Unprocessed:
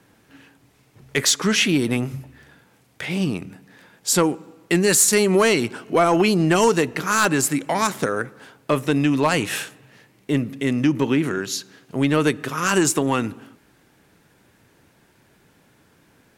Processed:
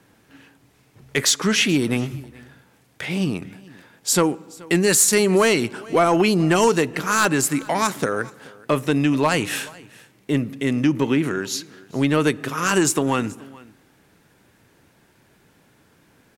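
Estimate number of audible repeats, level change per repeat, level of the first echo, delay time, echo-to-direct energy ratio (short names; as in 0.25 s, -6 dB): 1, no steady repeat, -23.0 dB, 0.428 s, -23.0 dB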